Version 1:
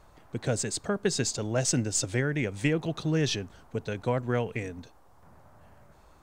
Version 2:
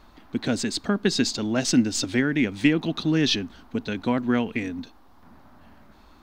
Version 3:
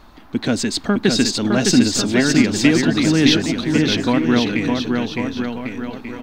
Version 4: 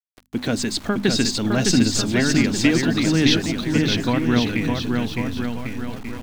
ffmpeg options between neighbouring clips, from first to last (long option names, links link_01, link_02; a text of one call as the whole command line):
ffmpeg -i in.wav -af "equalizer=frequency=125:width_type=o:width=1:gain=-11,equalizer=frequency=250:width_type=o:width=1:gain=11,equalizer=frequency=500:width_type=o:width=1:gain=-8,equalizer=frequency=4000:width_type=o:width=1:gain=7,equalizer=frequency=8000:width_type=o:width=1:gain=-10,volume=5dB" out.wav
ffmpeg -i in.wav -filter_complex "[0:a]asplit=2[link_01][link_02];[link_02]asoftclip=type=tanh:threshold=-23.5dB,volume=-12dB[link_03];[link_01][link_03]amix=inputs=2:normalize=0,aecho=1:1:610|1098|1488|1801|2051:0.631|0.398|0.251|0.158|0.1,volume=4.5dB" out.wav
ffmpeg -i in.wav -af "asubboost=boost=3.5:cutoff=180,aeval=exprs='val(0)*gte(abs(val(0)),0.0188)':channel_layout=same,bandreject=frequency=50:width_type=h:width=6,bandreject=frequency=100:width_type=h:width=6,bandreject=frequency=150:width_type=h:width=6,bandreject=frequency=200:width_type=h:width=6,bandreject=frequency=250:width_type=h:width=6,volume=-2.5dB" out.wav